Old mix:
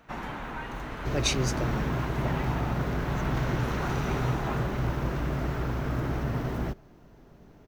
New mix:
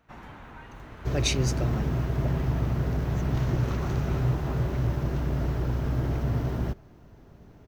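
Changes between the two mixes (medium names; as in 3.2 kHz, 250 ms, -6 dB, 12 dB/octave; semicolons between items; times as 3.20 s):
first sound -9.5 dB; master: add peaking EQ 84 Hz +9.5 dB 0.87 oct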